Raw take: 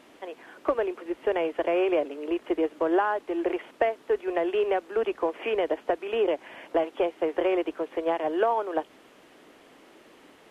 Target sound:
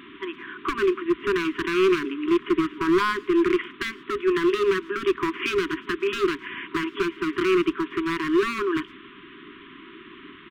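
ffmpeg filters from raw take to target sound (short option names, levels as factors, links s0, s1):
-filter_complex "[0:a]aresample=8000,aresample=44100,asplit=2[s0][s1];[s1]alimiter=limit=0.0841:level=0:latency=1:release=13,volume=1.26[s2];[s0][s2]amix=inputs=2:normalize=0,asoftclip=type=hard:threshold=0.106,asplit=2[s3][s4];[s4]adelay=110,highpass=300,lowpass=3400,asoftclip=type=hard:threshold=0.0355,volume=0.0794[s5];[s3][s5]amix=inputs=2:normalize=0,afftfilt=real='re*(1-between(b*sr/4096,410,960))':imag='im*(1-between(b*sr/4096,410,960))':win_size=4096:overlap=0.75,volume=1.58"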